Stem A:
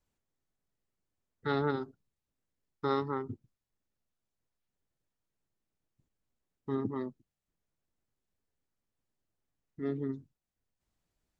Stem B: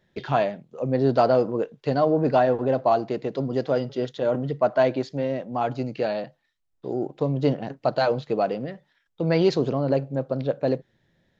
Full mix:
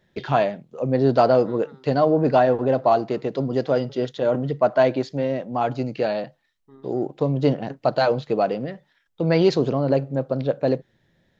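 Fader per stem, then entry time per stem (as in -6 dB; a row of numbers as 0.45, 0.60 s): -16.0, +2.5 dB; 0.00, 0.00 s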